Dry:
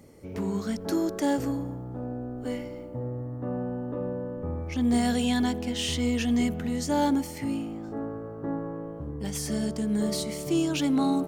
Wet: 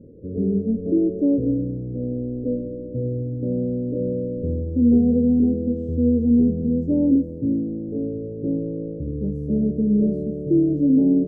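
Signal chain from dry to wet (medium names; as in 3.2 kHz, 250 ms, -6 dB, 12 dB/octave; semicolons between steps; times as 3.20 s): elliptic low-pass 510 Hz, stop band 50 dB; trim +8.5 dB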